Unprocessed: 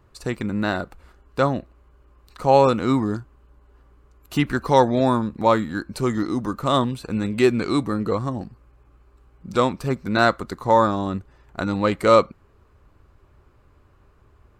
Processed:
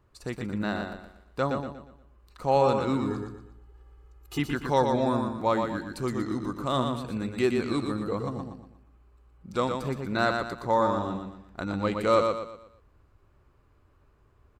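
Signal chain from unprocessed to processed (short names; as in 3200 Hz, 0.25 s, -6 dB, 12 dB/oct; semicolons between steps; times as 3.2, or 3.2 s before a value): 3.1–4.39 comb 2.4 ms, depth 92%; feedback echo 0.119 s, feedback 37%, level -5 dB; gain -8 dB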